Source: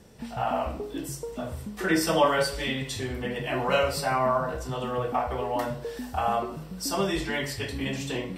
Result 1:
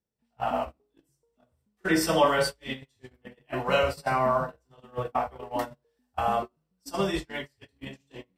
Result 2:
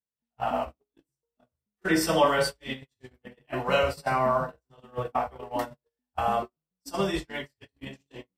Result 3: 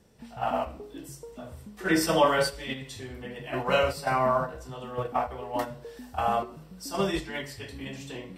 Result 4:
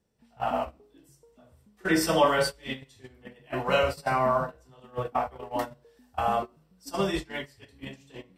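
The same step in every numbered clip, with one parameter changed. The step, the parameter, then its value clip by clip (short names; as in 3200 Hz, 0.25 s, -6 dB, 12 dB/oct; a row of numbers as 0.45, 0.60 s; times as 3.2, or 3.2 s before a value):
gate, range: -37, -52, -8, -23 dB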